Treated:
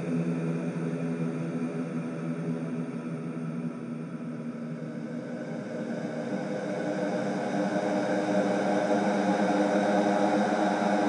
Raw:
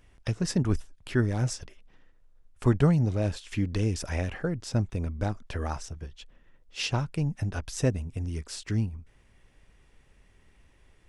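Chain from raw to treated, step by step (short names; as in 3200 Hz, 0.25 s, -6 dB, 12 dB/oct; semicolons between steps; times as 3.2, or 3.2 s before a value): FFT band-pass 120–10000 Hz; Paulstretch 48×, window 0.25 s, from 5.04; gain +6.5 dB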